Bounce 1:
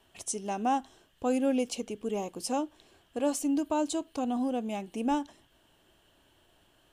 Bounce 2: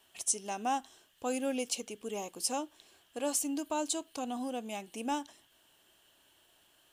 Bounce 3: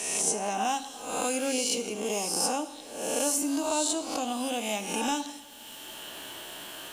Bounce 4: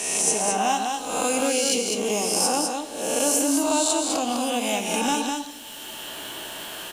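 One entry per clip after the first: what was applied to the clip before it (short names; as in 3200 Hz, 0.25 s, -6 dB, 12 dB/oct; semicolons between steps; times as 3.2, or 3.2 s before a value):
tilt +2.5 dB/oct; gain -3 dB
spectral swells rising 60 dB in 0.75 s; two-slope reverb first 0.62 s, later 2.4 s, from -20 dB, DRR 9 dB; three-band squash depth 70%; gain +3.5 dB
echo 0.203 s -4.5 dB; gain +5 dB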